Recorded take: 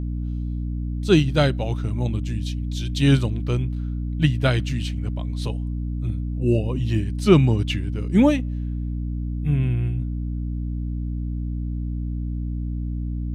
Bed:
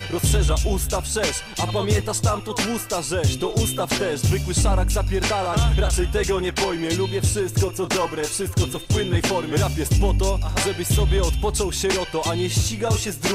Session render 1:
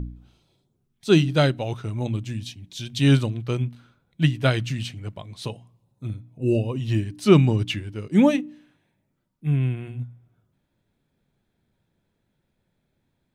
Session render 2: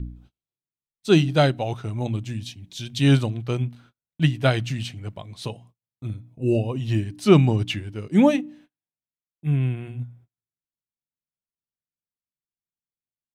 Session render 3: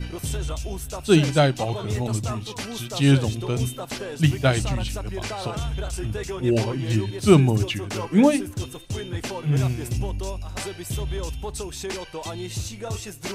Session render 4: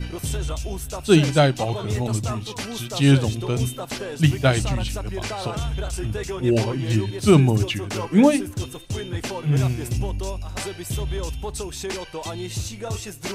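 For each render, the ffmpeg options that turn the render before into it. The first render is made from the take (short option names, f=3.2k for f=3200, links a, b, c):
-af "bandreject=f=60:t=h:w=4,bandreject=f=120:t=h:w=4,bandreject=f=180:t=h:w=4,bandreject=f=240:t=h:w=4,bandreject=f=300:t=h:w=4"
-af "agate=range=-34dB:threshold=-49dB:ratio=16:detection=peak,adynamicequalizer=threshold=0.00891:dfrequency=740:dqfactor=3.4:tfrequency=740:tqfactor=3.4:attack=5:release=100:ratio=0.375:range=3:mode=boostabove:tftype=bell"
-filter_complex "[1:a]volume=-9.5dB[a];[0:a][a]amix=inputs=2:normalize=0"
-af "volume=1.5dB,alimiter=limit=-3dB:level=0:latency=1"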